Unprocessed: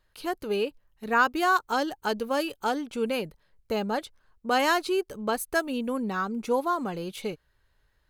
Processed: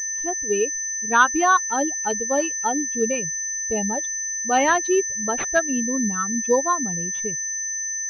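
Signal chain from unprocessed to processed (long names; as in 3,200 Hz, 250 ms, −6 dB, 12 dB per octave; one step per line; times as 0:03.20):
spectral dynamics exaggerated over time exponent 2
steady tone 1,800 Hz −43 dBFS
switching amplifier with a slow clock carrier 6,100 Hz
level +8.5 dB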